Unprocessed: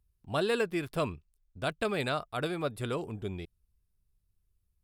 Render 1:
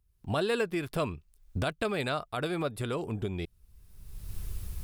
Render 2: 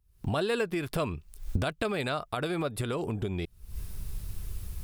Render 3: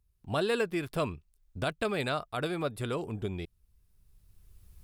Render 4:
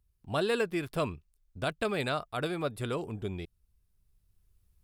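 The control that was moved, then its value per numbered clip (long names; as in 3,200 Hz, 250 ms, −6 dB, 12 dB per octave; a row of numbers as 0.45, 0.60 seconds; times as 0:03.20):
camcorder AGC, rising by: 34, 86, 14, 5.4 dB per second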